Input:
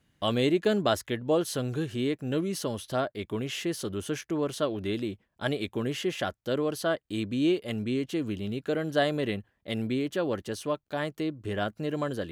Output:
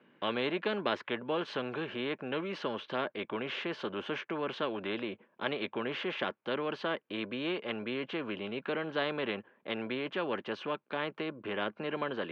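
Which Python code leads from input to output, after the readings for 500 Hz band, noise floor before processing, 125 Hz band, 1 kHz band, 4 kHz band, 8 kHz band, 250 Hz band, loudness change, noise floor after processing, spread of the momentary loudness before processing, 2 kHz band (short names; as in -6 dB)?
-6.0 dB, -74 dBFS, -13.0 dB, -2.0 dB, -3.0 dB, under -25 dB, -8.0 dB, -5.5 dB, -71 dBFS, 7 LU, 0.0 dB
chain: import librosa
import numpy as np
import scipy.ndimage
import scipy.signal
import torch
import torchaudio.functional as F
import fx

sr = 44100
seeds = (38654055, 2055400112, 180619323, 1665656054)

y = fx.cabinet(x, sr, low_hz=250.0, low_slope=24, high_hz=2200.0, hz=(290.0, 720.0, 1300.0, 1900.0), db=(-7, -10, -5, -10))
y = fx.spectral_comp(y, sr, ratio=2.0)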